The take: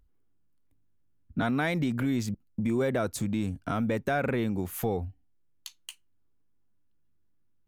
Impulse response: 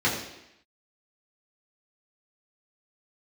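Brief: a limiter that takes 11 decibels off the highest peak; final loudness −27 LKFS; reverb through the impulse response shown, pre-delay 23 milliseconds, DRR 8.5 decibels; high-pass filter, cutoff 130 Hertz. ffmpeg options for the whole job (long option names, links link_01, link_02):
-filter_complex "[0:a]highpass=130,alimiter=level_in=2.5dB:limit=-24dB:level=0:latency=1,volume=-2.5dB,asplit=2[link_01][link_02];[1:a]atrim=start_sample=2205,adelay=23[link_03];[link_02][link_03]afir=irnorm=-1:irlink=0,volume=-23dB[link_04];[link_01][link_04]amix=inputs=2:normalize=0,volume=8dB"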